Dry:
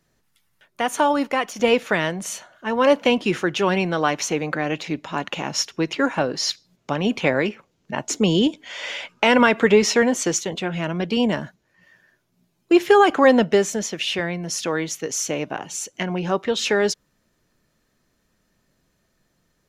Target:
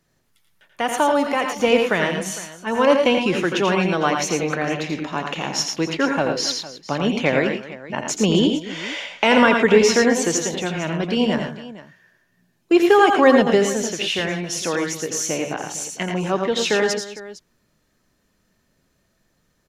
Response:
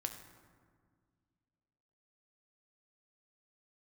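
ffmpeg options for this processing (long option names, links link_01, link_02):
-af "aecho=1:1:85|111|263|456:0.473|0.398|0.141|0.141"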